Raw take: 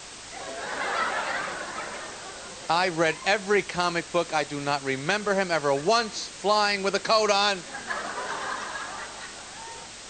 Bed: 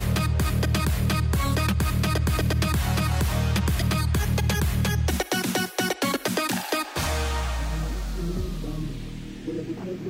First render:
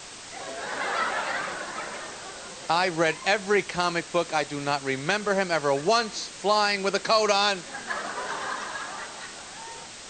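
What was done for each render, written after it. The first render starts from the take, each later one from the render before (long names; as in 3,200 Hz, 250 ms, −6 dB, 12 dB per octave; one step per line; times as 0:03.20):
hum removal 50 Hz, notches 2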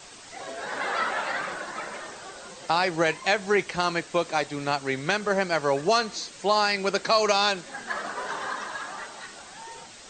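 broadband denoise 6 dB, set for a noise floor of −42 dBFS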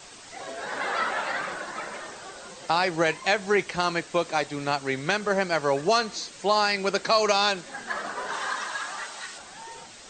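0:08.33–0:09.38: tilt shelving filter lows −5 dB, about 800 Hz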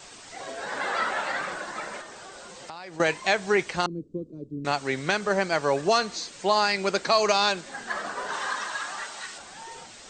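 0:02.01–0:03.00: downward compressor 4 to 1, threshold −39 dBFS
0:03.86–0:04.65: inverse Chebyshev low-pass filter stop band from 730 Hz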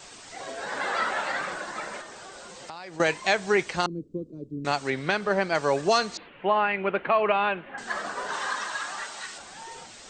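0:04.90–0:05.55: parametric band 7,000 Hz −11.5 dB 0.83 octaves
0:06.17–0:07.78: elliptic low-pass filter 2,900 Hz, stop band 50 dB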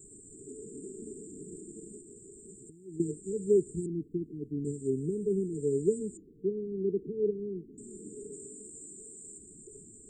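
brick-wall band-stop 460–7,000 Hz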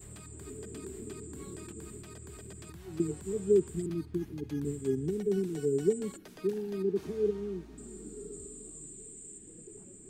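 mix in bed −26.5 dB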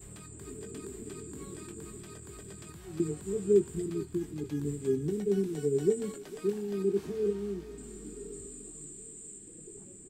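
double-tracking delay 20 ms −8.5 dB
feedback echo with a high-pass in the loop 449 ms, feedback 71%, high-pass 970 Hz, level −10 dB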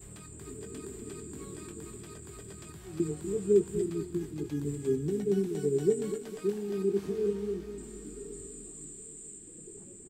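single-tap delay 245 ms −10.5 dB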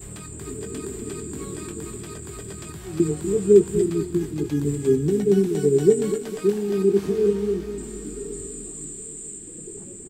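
level +10 dB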